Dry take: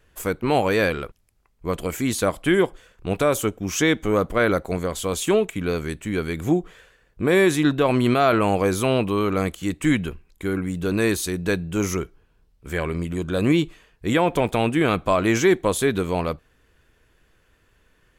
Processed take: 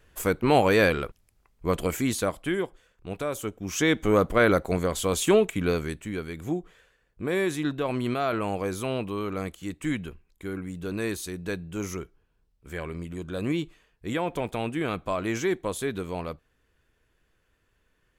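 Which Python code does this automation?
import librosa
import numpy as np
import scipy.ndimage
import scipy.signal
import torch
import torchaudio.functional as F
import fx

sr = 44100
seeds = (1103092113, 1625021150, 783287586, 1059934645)

y = fx.gain(x, sr, db=fx.line((1.86, 0.0), (2.65, -10.5), (3.35, -10.5), (4.09, -0.5), (5.69, -0.5), (6.26, -9.0)))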